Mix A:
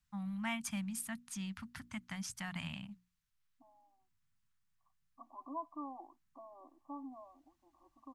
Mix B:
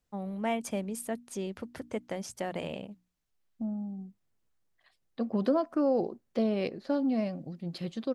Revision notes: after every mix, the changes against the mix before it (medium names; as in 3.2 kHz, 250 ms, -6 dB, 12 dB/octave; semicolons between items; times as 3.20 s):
second voice: remove brick-wall FIR band-pass 270–1200 Hz; master: remove Chebyshev band-stop 170–1200 Hz, order 2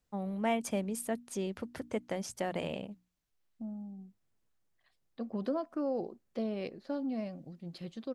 second voice -7.0 dB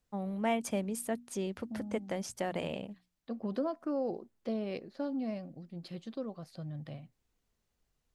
second voice: entry -1.90 s